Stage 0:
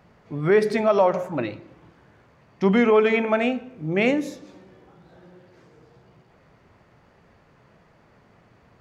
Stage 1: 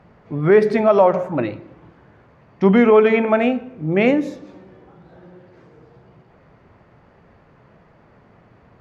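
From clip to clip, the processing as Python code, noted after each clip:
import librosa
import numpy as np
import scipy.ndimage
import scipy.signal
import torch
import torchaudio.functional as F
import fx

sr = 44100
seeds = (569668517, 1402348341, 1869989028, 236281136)

y = fx.lowpass(x, sr, hz=1900.0, slope=6)
y = y * 10.0 ** (5.5 / 20.0)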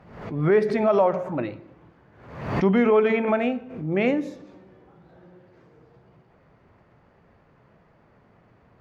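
y = fx.pre_swell(x, sr, db_per_s=73.0)
y = y * 10.0 ** (-6.5 / 20.0)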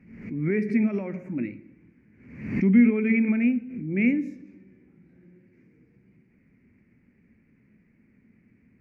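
y = fx.curve_eq(x, sr, hz=(150.0, 230.0, 670.0, 1200.0, 2300.0, 3400.0, 5400.0), db=(0, 12, -18, -16, 9, -19, -5))
y = y * 10.0 ** (-5.5 / 20.0)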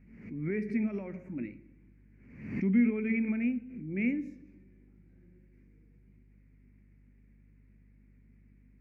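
y = fx.add_hum(x, sr, base_hz=50, snr_db=25)
y = y * 10.0 ** (-8.0 / 20.0)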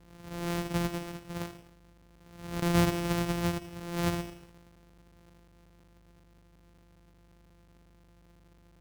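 y = np.r_[np.sort(x[:len(x) // 256 * 256].reshape(-1, 256), axis=1).ravel(), x[len(x) // 256 * 256:]]
y = fx.echo_crushed(y, sr, ms=84, feedback_pct=55, bits=8, wet_db=-15)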